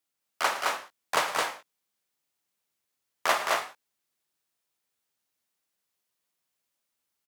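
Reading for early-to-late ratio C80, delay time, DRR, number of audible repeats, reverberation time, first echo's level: no reverb, 109 ms, no reverb, 2, no reverb, -15.5 dB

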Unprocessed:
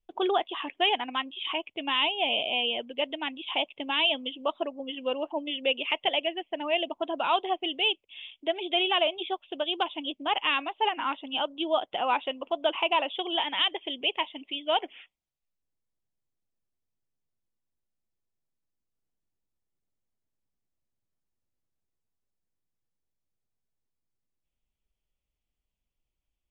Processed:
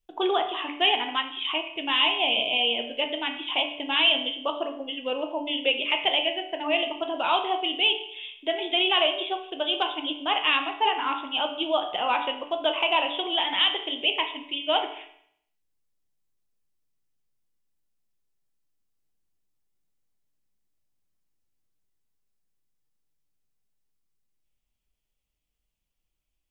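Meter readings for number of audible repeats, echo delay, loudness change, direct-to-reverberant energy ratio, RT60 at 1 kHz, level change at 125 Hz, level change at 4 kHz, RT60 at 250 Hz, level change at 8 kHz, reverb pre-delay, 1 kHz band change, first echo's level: no echo, no echo, +3.5 dB, 4.0 dB, 0.65 s, no reading, +4.5 dB, 0.65 s, no reading, 7 ms, +2.0 dB, no echo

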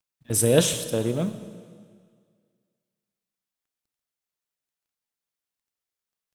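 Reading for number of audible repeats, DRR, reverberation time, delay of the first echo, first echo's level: no echo, 10.0 dB, 1.9 s, no echo, no echo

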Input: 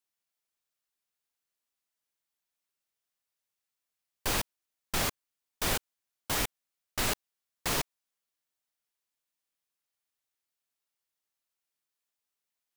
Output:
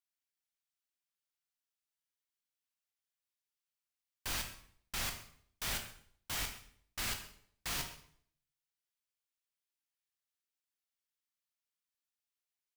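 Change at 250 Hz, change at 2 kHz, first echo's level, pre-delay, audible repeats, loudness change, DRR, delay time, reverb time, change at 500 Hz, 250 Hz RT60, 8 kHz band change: -12.0 dB, -6.5 dB, -18.5 dB, 16 ms, 1, -7.0 dB, 4.5 dB, 131 ms, 0.60 s, -14.5 dB, 0.65 s, -6.5 dB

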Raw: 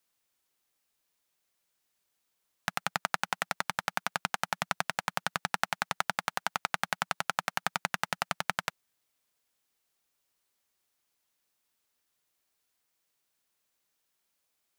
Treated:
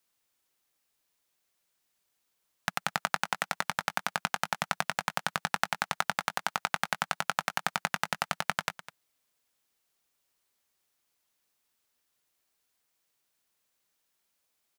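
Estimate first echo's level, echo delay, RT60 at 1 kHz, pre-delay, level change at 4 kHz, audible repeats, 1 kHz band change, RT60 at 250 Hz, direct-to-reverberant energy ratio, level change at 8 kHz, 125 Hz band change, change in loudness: -15.5 dB, 204 ms, no reverb, no reverb, +1.0 dB, 1, +1.0 dB, no reverb, no reverb, +1.0 dB, +1.0 dB, +1.0 dB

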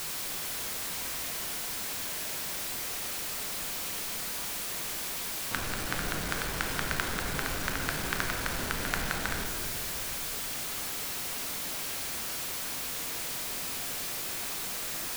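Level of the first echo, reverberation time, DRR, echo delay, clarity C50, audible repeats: no echo, 2.9 s, 1.5 dB, no echo, 3.5 dB, no echo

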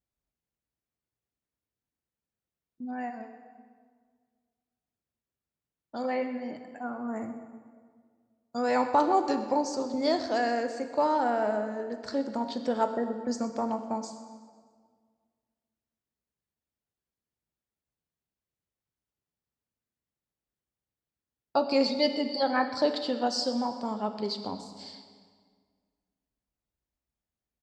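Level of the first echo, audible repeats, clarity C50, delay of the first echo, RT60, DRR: -18.0 dB, 2, 8.5 dB, 126 ms, 1.8 s, 6.5 dB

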